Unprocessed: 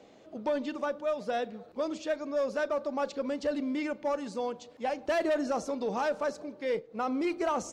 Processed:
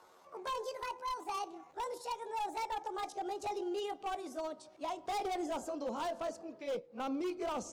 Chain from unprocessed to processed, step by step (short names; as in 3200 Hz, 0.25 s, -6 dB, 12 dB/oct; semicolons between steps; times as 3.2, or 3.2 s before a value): gliding pitch shift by +10.5 st ending unshifted; wavefolder -26.5 dBFS; dynamic EQ 1800 Hz, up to -8 dB, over -52 dBFS, Q 2; gain -4.5 dB